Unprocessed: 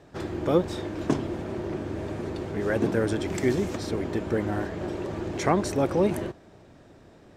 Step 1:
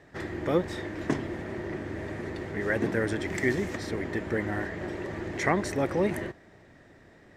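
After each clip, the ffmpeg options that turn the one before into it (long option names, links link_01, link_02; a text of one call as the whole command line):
ffmpeg -i in.wav -af "equalizer=frequency=1900:width=3.8:gain=13.5,volume=-3.5dB" out.wav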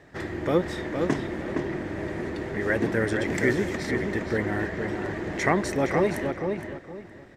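ffmpeg -i in.wav -filter_complex "[0:a]asplit=2[link_01][link_02];[link_02]adelay=466,lowpass=frequency=3500:poles=1,volume=-5dB,asplit=2[link_03][link_04];[link_04]adelay=466,lowpass=frequency=3500:poles=1,volume=0.26,asplit=2[link_05][link_06];[link_06]adelay=466,lowpass=frequency=3500:poles=1,volume=0.26[link_07];[link_01][link_03][link_05][link_07]amix=inputs=4:normalize=0,volume=2.5dB" out.wav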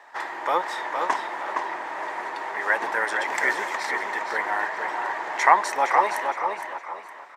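ffmpeg -i in.wav -filter_complex "[0:a]highpass=frequency=920:width_type=q:width=4.9,asplit=4[link_01][link_02][link_03][link_04];[link_02]adelay=462,afreqshift=80,volume=-13dB[link_05];[link_03]adelay=924,afreqshift=160,volume=-22.1dB[link_06];[link_04]adelay=1386,afreqshift=240,volume=-31.2dB[link_07];[link_01][link_05][link_06][link_07]amix=inputs=4:normalize=0,volume=2.5dB" out.wav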